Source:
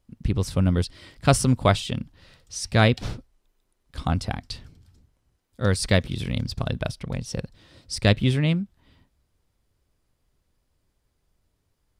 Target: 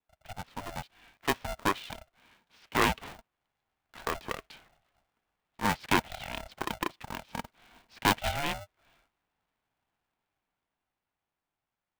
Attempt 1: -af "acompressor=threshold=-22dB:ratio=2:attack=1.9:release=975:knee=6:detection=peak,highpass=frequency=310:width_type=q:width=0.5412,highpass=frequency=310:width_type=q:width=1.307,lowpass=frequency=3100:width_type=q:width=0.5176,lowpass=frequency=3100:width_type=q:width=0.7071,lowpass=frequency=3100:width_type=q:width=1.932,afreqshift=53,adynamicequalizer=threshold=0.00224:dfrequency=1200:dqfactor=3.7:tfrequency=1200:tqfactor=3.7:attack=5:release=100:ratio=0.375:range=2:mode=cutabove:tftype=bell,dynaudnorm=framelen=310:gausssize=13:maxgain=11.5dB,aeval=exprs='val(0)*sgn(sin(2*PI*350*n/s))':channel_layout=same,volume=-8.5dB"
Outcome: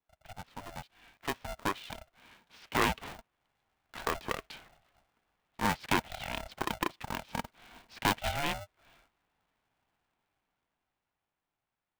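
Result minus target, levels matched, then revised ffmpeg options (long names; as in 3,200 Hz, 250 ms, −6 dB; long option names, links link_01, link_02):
downward compressor: peak gain reduction +9 dB
-af "highpass=frequency=310:width_type=q:width=0.5412,highpass=frequency=310:width_type=q:width=1.307,lowpass=frequency=3100:width_type=q:width=0.5176,lowpass=frequency=3100:width_type=q:width=0.7071,lowpass=frequency=3100:width_type=q:width=1.932,afreqshift=53,adynamicequalizer=threshold=0.00224:dfrequency=1200:dqfactor=3.7:tfrequency=1200:tqfactor=3.7:attack=5:release=100:ratio=0.375:range=2:mode=cutabove:tftype=bell,dynaudnorm=framelen=310:gausssize=13:maxgain=11.5dB,aeval=exprs='val(0)*sgn(sin(2*PI*350*n/s))':channel_layout=same,volume=-8.5dB"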